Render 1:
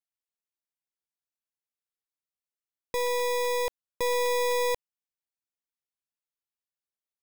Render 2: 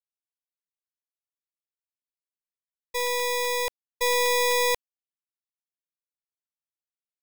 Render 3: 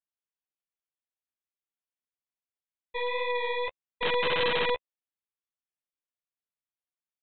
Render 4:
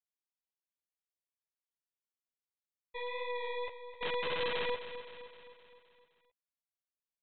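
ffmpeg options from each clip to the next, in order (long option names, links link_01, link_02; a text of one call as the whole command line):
ffmpeg -i in.wav -filter_complex "[0:a]agate=range=-33dB:threshold=-23dB:ratio=3:detection=peak,acrossover=split=1200[link_01][link_02];[link_02]acontrast=86[link_03];[link_01][link_03]amix=inputs=2:normalize=0,volume=6.5dB" out.wav
ffmpeg -i in.wav -af "flanger=delay=8:depth=6.1:regen=-5:speed=1.8:shape=sinusoidal,aresample=8000,aeval=exprs='(mod(10*val(0)+1,2)-1)/10':channel_layout=same,aresample=44100" out.wav
ffmpeg -i in.wav -af "aecho=1:1:259|518|777|1036|1295|1554:0.251|0.138|0.076|0.0418|0.023|0.0126,volume=-9dB" out.wav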